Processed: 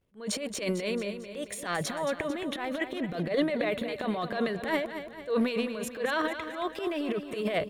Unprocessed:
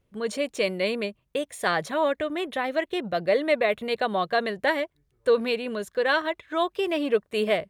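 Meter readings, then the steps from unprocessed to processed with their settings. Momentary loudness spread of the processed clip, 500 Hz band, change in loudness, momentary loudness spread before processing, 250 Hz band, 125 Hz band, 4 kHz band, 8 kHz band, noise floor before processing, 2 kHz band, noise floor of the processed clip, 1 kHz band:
6 LU, −6.5 dB, −5.5 dB, 6 LU, 0.0 dB, +2.0 dB, −5.5 dB, can't be measured, −72 dBFS, −6.5 dB, −45 dBFS, −7.0 dB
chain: transient designer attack −11 dB, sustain +12 dB
repeating echo 223 ms, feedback 50%, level −10 dB
level −6 dB

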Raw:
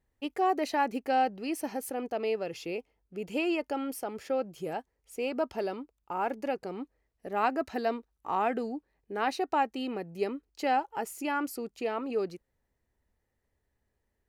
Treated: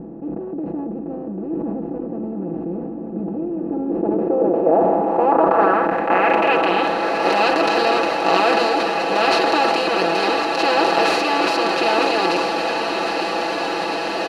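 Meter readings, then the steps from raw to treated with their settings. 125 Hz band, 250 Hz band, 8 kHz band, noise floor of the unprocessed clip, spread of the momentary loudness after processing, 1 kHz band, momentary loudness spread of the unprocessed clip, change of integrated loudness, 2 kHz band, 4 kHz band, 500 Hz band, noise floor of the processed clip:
+16.5 dB, +13.0 dB, +10.0 dB, −80 dBFS, 12 LU, +13.5 dB, 11 LU, +14.0 dB, +17.0 dB, +20.5 dB, +14.5 dB, −29 dBFS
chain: compressor on every frequency bin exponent 0.2
high-shelf EQ 5,600 Hz +5 dB
low-pass filter sweep 220 Hz → 4,500 Hz, 0:03.57–0:07.12
comb filter 6 ms, depth 78%
on a send: feedback delay with all-pass diffusion 902 ms, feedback 76%, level −6 dB
on the sum: level that may fall only so fast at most 21 dB per second
level −1 dB

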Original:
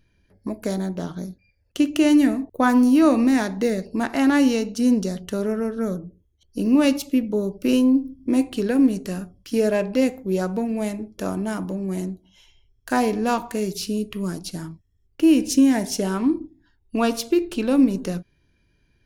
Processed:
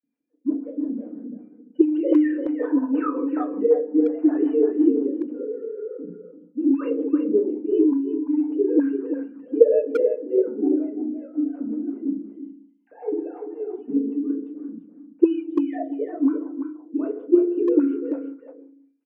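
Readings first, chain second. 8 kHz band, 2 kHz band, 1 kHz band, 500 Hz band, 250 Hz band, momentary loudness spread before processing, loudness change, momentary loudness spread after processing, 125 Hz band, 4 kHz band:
below −35 dB, below −10 dB, −10.5 dB, +3.0 dB, −2.0 dB, 14 LU, −1.5 dB, 15 LU, below −20 dB, below −25 dB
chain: three sine waves on the formant tracks
feedback delay network reverb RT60 0.7 s, low-frequency decay 1×, high-frequency decay 0.25×, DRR −2.5 dB
rotating-speaker cabinet horn 5.5 Hz
envelope filter 240–1,500 Hz, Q 3.4, up, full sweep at −2.5 dBFS
far-end echo of a speakerphone 340 ms, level −7 dB
level +4.5 dB

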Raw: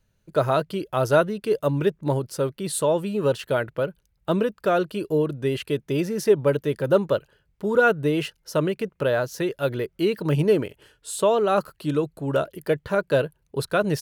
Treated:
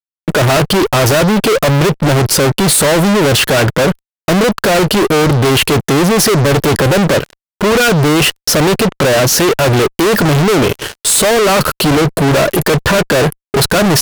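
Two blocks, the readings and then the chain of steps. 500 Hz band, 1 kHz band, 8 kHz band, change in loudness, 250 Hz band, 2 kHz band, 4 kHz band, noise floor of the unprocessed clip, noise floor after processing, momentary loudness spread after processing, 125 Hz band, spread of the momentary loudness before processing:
+9.5 dB, +13.0 dB, +22.5 dB, +13.0 dB, +14.0 dB, +15.5 dB, +22.0 dB, −69 dBFS, below −85 dBFS, 4 LU, +15.0 dB, 7 LU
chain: noise gate with hold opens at −44 dBFS
fuzz pedal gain 47 dB, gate −54 dBFS
level +4 dB

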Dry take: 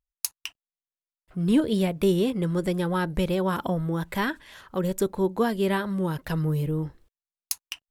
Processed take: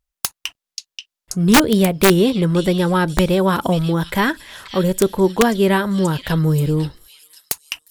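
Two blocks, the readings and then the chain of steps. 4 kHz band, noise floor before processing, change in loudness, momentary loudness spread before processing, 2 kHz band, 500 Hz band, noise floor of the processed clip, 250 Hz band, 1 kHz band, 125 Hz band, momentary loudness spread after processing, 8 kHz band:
+12.5 dB, below −85 dBFS, +9.0 dB, 10 LU, +11.5 dB, +9.0 dB, below −85 dBFS, +8.5 dB, +10.5 dB, +9.0 dB, 14 LU, +11.0 dB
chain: echo through a band-pass that steps 533 ms, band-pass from 4,100 Hz, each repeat 0.7 octaves, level −2.5 dB
tape wow and flutter 21 cents
wrap-around overflow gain 13.5 dB
level +9 dB

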